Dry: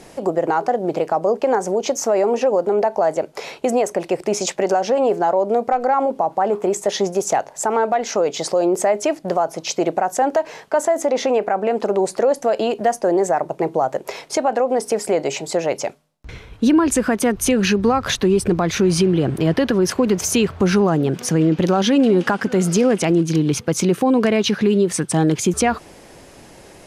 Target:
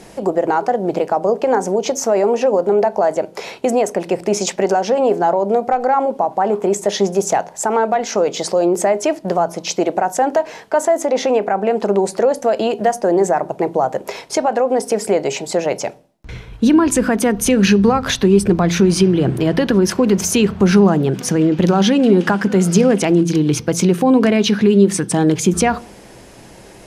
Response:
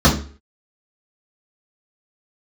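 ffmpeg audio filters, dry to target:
-filter_complex "[0:a]asplit=2[s0][s1];[1:a]atrim=start_sample=2205,asetrate=36162,aresample=44100[s2];[s1][s2]afir=irnorm=-1:irlink=0,volume=0.00944[s3];[s0][s3]amix=inputs=2:normalize=0,volume=1.26"

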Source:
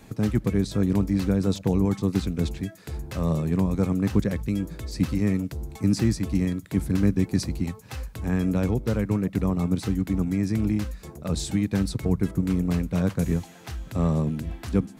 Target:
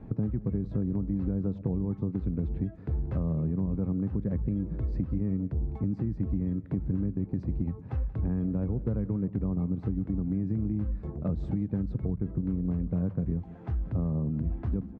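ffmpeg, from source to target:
-filter_complex "[0:a]lowpass=1200,lowshelf=f=410:g=11.5,alimiter=limit=0.282:level=0:latency=1:release=243,acompressor=threshold=0.0891:ratio=6,asplit=2[s0][s1];[s1]aecho=0:1:182:0.119[s2];[s0][s2]amix=inputs=2:normalize=0,volume=0.596"

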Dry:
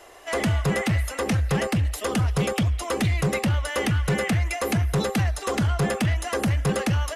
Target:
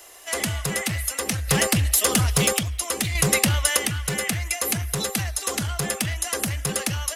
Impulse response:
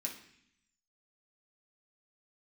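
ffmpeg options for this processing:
-filter_complex "[0:a]asettb=1/sr,asplit=3[s0][s1][s2];[s0]atrim=end=3.154[s3];[s1]atrim=start=3.15:end=3.77,asetpts=PTS-STARTPTS,afade=t=in:d=0.004:c=qsin,afade=t=out:st=0.616:d=0.004:c=qsin,acontrast=57[s4];[s2]atrim=start=3.766[s5];[s3][s4]acrossfade=d=0.004:c1=hsin:c2=qsin[s6];[s6][s5]acrossfade=d=0.004:c1=qsin:c2=hsin,crystalizer=i=5.5:c=0,asplit=3[s7][s8][s9];[s7]afade=t=out:st=1.47:d=0.02[s10];[s8]acontrast=80,afade=t=in:st=1.47:d=0.02,afade=t=out:st=2.57:d=0.02[s11];[s9]afade=t=in:st=2.57:d=0.02[s12];[s10][s11][s12]amix=inputs=3:normalize=0,acrusher=bits=9:mix=0:aa=0.000001,volume=0.501"

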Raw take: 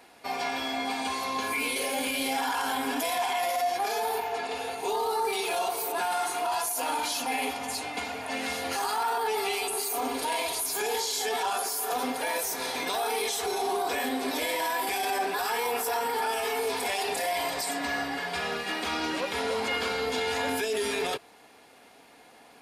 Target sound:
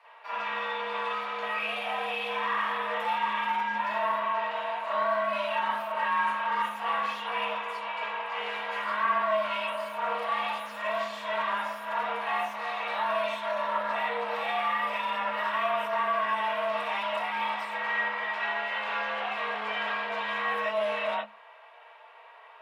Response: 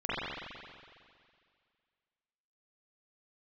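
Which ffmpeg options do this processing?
-filter_complex "[0:a]aeval=exprs='clip(val(0),-1,0.0158)':c=same,acrossover=split=320 3100:gain=0.178 1 0.0891[s0][s1][s2];[s0][s1][s2]amix=inputs=3:normalize=0[s3];[1:a]atrim=start_sample=2205,afade=t=out:st=0.13:d=0.01,atrim=end_sample=6174[s4];[s3][s4]afir=irnorm=-1:irlink=0,afreqshift=210,highpass=250,volume=0.841"

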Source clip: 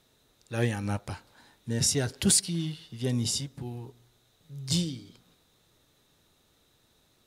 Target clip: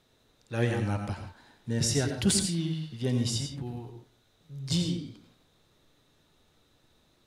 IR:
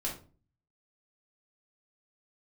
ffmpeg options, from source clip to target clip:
-filter_complex "[0:a]highshelf=f=7000:g=-9.5,asplit=2[s0][s1];[1:a]atrim=start_sample=2205,afade=t=out:st=0.14:d=0.01,atrim=end_sample=6615,adelay=87[s2];[s1][s2]afir=irnorm=-1:irlink=0,volume=0.376[s3];[s0][s3]amix=inputs=2:normalize=0"

